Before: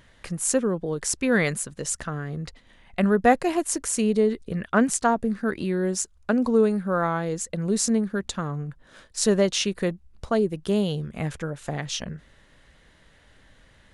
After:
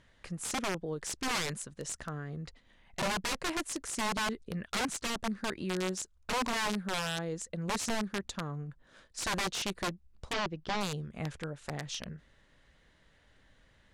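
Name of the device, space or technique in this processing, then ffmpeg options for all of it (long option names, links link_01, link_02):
overflowing digital effects unit: -filter_complex "[0:a]aeval=exprs='(mod(7.94*val(0)+1,2)-1)/7.94':channel_layout=same,lowpass=8700,asettb=1/sr,asplit=3[link_01][link_02][link_03];[link_01]atrim=end=10.334[link_04];[link_02]atrim=start=10.33:end=10.81,asetpts=PTS-STARTPTS,afade=type=in:duration=0.004:curve=qsin,afade=type=out:start_time=0.476:duration=0.004:curve=qsin,lowpass=frequency=5400:width=0.5412,lowpass=frequency=5400:width=1.3066[link_05];[link_03]atrim=start=10.806[link_06];[link_04][link_05]acrossfade=duration=0.004:curve1=hsin:curve2=qsin[link_07];[link_07][link_06]acrossfade=duration=0.004:curve1=qsin:curve2=hsin,volume=-8.5dB"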